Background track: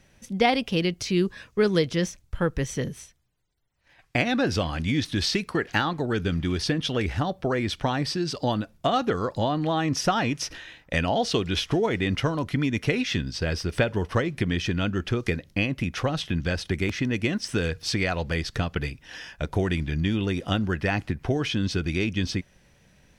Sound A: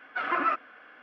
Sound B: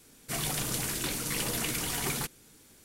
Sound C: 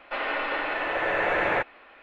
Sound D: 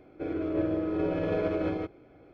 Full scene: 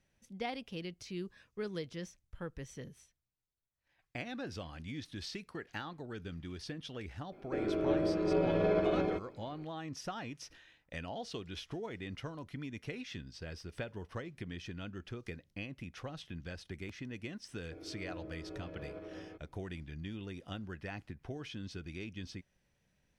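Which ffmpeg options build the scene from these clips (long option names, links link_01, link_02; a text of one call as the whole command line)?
ffmpeg -i bed.wav -i cue0.wav -i cue1.wav -i cue2.wav -i cue3.wav -filter_complex "[4:a]asplit=2[link_01][link_02];[0:a]volume=-18dB[link_03];[link_01]aecho=1:1:5.1:0.48,atrim=end=2.33,asetpts=PTS-STARTPTS,volume=-1.5dB,afade=type=in:duration=0.004:curve=hsin,afade=type=out:start_time=2.326:duration=0.004:curve=hsin,adelay=7320[link_04];[link_02]atrim=end=2.33,asetpts=PTS-STARTPTS,volume=-18dB,afade=type=in:duration=0.004:curve=hsin,afade=type=out:start_time=2.326:duration=0.004:curve=hsin,adelay=17510[link_05];[link_03][link_04][link_05]amix=inputs=3:normalize=0" out.wav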